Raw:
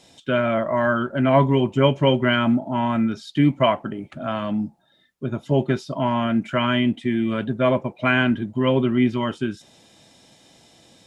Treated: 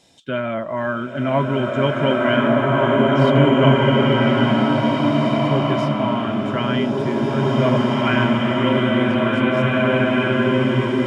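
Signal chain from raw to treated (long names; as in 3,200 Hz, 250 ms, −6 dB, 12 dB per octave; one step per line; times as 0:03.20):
slow-attack reverb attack 2,050 ms, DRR −6.5 dB
level −3 dB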